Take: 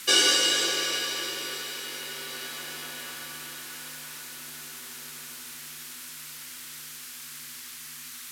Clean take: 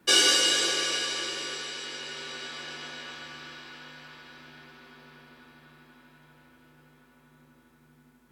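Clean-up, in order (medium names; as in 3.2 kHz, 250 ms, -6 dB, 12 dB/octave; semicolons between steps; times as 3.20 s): noise print and reduce 17 dB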